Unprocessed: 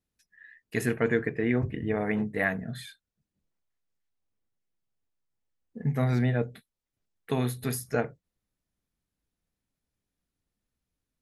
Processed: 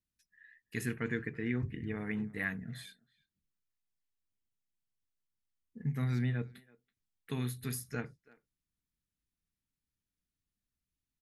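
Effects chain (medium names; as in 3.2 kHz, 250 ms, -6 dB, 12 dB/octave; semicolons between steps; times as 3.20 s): peaking EQ 630 Hz -15 dB 1.1 oct; speakerphone echo 330 ms, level -22 dB; trim -5.5 dB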